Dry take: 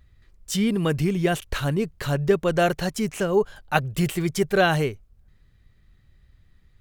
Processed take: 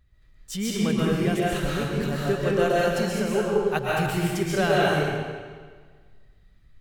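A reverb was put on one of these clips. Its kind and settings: digital reverb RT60 1.6 s, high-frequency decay 0.9×, pre-delay 90 ms, DRR -6 dB; gain -7 dB

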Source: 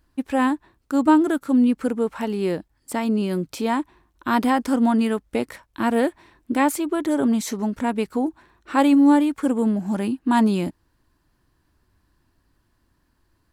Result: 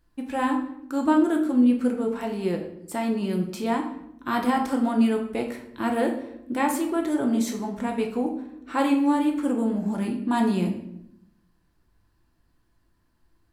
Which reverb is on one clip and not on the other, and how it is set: shoebox room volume 180 m³, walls mixed, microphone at 0.79 m; gain -5.5 dB

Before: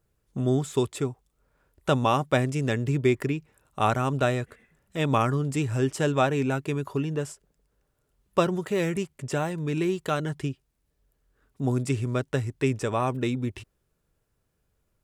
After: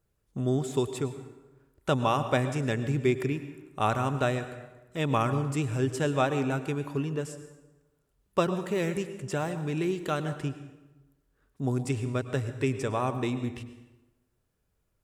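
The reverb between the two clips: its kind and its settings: plate-style reverb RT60 1.1 s, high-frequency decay 0.7×, pre-delay 90 ms, DRR 10.5 dB; gain -3 dB

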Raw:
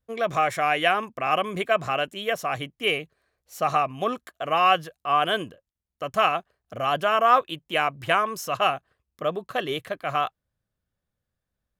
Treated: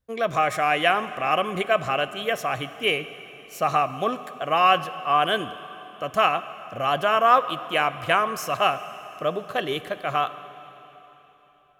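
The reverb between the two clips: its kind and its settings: plate-style reverb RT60 3.7 s, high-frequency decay 1×, DRR 12.5 dB; gain +1 dB

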